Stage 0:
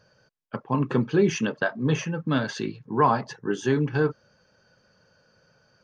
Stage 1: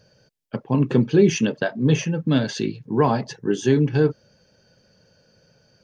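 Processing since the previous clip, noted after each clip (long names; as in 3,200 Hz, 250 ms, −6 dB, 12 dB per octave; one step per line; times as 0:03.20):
parametric band 1,200 Hz −12 dB 1.1 octaves
level +6 dB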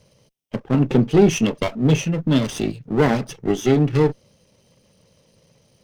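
lower of the sound and its delayed copy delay 0.33 ms
level +2 dB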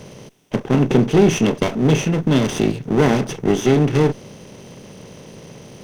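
compressor on every frequency bin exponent 0.6
level −1 dB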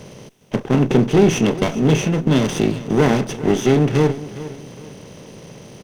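repeating echo 409 ms, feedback 36%, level −15.5 dB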